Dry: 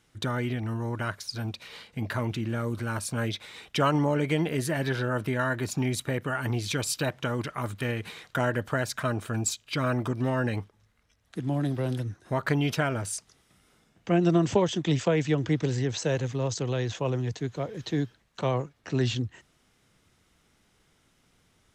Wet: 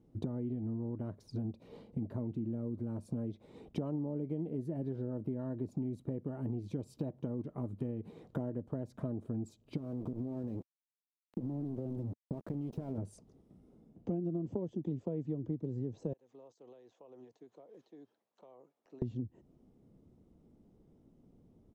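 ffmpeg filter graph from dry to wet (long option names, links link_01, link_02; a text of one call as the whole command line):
ffmpeg -i in.wav -filter_complex "[0:a]asettb=1/sr,asplit=3[link_01][link_02][link_03];[link_01]atrim=end=9.774[link_04];[link_02]atrim=start=9.77:end=12.98,asetpts=PTS-STARTPTS,afade=type=in:duration=0.004:curve=qsin,afade=type=out:start_time=3.206:duration=0.004:curve=qsin,acompressor=threshold=-31dB:ratio=20:attack=3.2:release=140:knee=1:detection=peak,aeval=exprs='val(0)*gte(abs(val(0)),0.0119)':channel_layout=same[link_05];[link_03]atrim=start=12.976[link_06];[link_04][link_05]acrossfade=duration=0.004:curve1=hsin:curve2=qsin[link_07];[link_07][link_06]acrossfade=duration=0.004:curve1=qsin:curve2=hsin,asettb=1/sr,asplit=3[link_08][link_09][link_10];[link_08]atrim=end=16.134[link_11];[link_09]atrim=start=16.13:end=19.02,asetpts=PTS-STARTPTS,afade=type=in:duration=0.004:curve=qsin,afade=type=out:start_time=2.886:duration=0.004:curve=qsin,highpass=990,acompressor=threshold=-51dB:ratio=6:attack=3.2:release=140:knee=1:detection=peak[link_12];[link_10]atrim=start=19.016[link_13];[link_11][link_12]acrossfade=duration=0.004:curve1=hsin:curve2=qsin[link_14];[link_14][link_13]acrossfade=duration=0.004:curve1=qsin:curve2=hsin,firequalizer=gain_entry='entry(100,0);entry(230,7);entry(1500,-26)':delay=0.05:min_phase=1,acompressor=threshold=-37dB:ratio=6,volume=2dB" out.wav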